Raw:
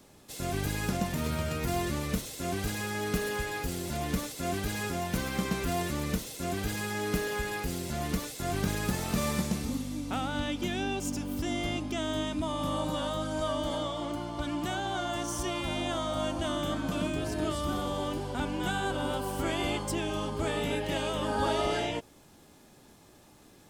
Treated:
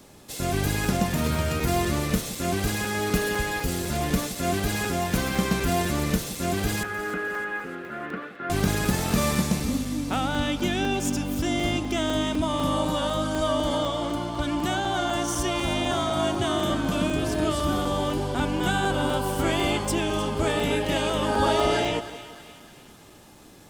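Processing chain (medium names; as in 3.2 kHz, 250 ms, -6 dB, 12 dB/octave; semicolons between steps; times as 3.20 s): 6.83–8.50 s: cabinet simulation 380–2200 Hz, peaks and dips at 450 Hz -3 dB, 660 Hz -7 dB, 930 Hz -9 dB, 1.4 kHz +7 dB, 2.2 kHz -4 dB; 15.91–16.70 s: frequency shift +34 Hz; two-band feedback delay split 1.1 kHz, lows 169 ms, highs 306 ms, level -14 dB; crackling interface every 0.25 s, samples 128, zero, from 0.85 s; trim +6.5 dB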